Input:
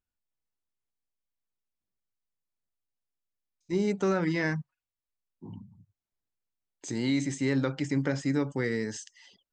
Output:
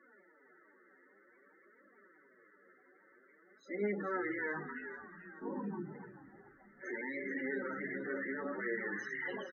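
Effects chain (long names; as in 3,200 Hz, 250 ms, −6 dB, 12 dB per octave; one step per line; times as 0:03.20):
compressor on every frequency bin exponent 0.4
meter weighting curve A
noise reduction from a noise print of the clip's start 16 dB
high-shelf EQ 5,300 Hz −11.5 dB
downward compressor 8 to 1, threshold −44 dBFS, peak gain reduction 20 dB
transient designer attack −10 dB, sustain +8 dB
flanger 0.54 Hz, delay 3.4 ms, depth 8.7 ms, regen +15%
spectral peaks only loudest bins 16
echo with shifted repeats 435 ms, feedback 44%, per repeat −74 Hz, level −10 dB
convolution reverb RT60 0.15 s, pre-delay 3 ms, DRR 7.5 dB
level +6.5 dB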